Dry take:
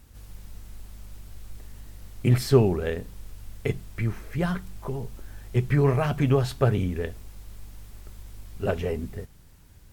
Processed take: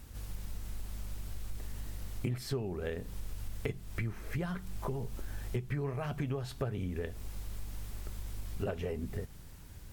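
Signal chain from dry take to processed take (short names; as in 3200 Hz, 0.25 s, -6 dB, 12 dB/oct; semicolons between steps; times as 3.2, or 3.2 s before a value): compressor 8:1, threshold -35 dBFS, peak gain reduction 22 dB; gain +2.5 dB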